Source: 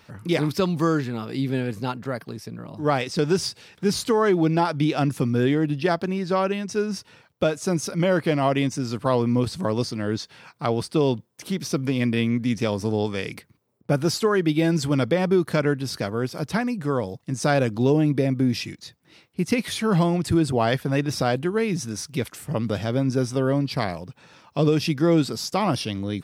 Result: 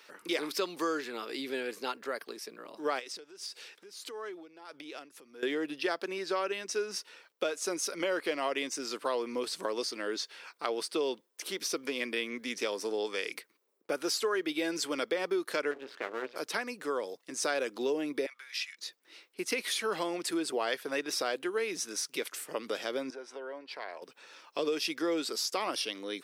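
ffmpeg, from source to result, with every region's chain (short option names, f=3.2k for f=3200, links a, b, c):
-filter_complex "[0:a]asettb=1/sr,asplit=3[a][b][c];[a]atrim=end=2.994[d];[b]atrim=start=2.99:end=5.43,asetpts=PTS-STARTPTS,afade=t=in:d=0.004:c=qsin,afade=t=out:st=2.436:d=0.004:c=qsin,acompressor=threshold=-32dB:ratio=12:attack=3.2:release=140:knee=1:detection=peak,tremolo=f=1.6:d=0.68[e];[c]atrim=start=5.426[f];[d][e]acrossfade=d=0.004:c1=hsin:c2=qsin[g];[g][f]acrossfade=d=0.004:c1=qsin:c2=hsin,asettb=1/sr,asplit=3[h][i][j];[h]atrim=end=15.714[k];[i]atrim=start=15.71:end=16.36,asetpts=PTS-STARTPTS,afade=t=in:d=0.004:c=qsin,afade=t=out:st=0.646:d=0.004:c=qsin,lowpass=f=2.8k:w=0.5412,lowpass=f=2.8k:w=1.3066,bandreject=f=60:t=h:w=6,bandreject=f=120:t=h:w=6,bandreject=f=180:t=h:w=6,bandreject=f=240:t=h:w=6,bandreject=f=300:t=h:w=6,bandreject=f=360:t=h:w=6,bandreject=f=420:t=h:w=6,bandreject=f=480:t=h:w=6,bandreject=f=540:t=h:w=6,aeval=exprs='max(val(0),0)':c=same[l];[j]atrim=start=16.356[m];[k][l]acrossfade=d=0.004:c1=hsin:c2=qsin[n];[n][m]acrossfade=d=0.004:c1=qsin:c2=hsin,asettb=1/sr,asplit=3[o][p][q];[o]atrim=end=18.264[r];[p]atrim=start=18.26:end=18.77,asetpts=PTS-STARTPTS,afade=t=in:d=0.004:c=qsin,afade=t=out:st=0.506:d=0.004:c=qsin,highpass=f=1.2k:w=0.5412,highpass=f=1.2k:w=1.3066,aemphasis=mode=reproduction:type=cd,aeval=exprs='val(0)+0.000562*(sin(2*PI*50*n/s)+sin(2*PI*2*50*n/s)/2+sin(2*PI*3*50*n/s)/3+sin(2*PI*4*50*n/s)/4+sin(2*PI*5*50*n/s)/5)':c=same[s];[q]atrim=start=18.766[t];[r][s]acrossfade=d=0.004:c1=hsin:c2=qsin[u];[u][t]acrossfade=d=0.004:c1=qsin:c2=hsin,asettb=1/sr,asplit=3[v][w][x];[v]atrim=end=23.104[y];[w]atrim=start=23.1:end=24.02,asetpts=PTS-STARTPTS,afade=t=in:d=0.004:c=qsin,afade=t=out:st=0.916:d=0.004:c=qsin,bandreject=f=1.2k:w=5.7,acompressor=threshold=-25dB:ratio=5:attack=3.2:release=140:knee=1:detection=peak,bandpass=f=1k:t=q:w=0.86[z];[x]atrim=start=24.016[aa];[y][z]acrossfade=d=0.004:c1=hsin:c2=qsin[ab];[ab][aa]acrossfade=d=0.004:c1=qsin:c2=hsin,highpass=f=390:w=0.5412,highpass=f=390:w=1.3066,equalizer=f=740:t=o:w=1.1:g=-7.5,acompressor=threshold=-31dB:ratio=2"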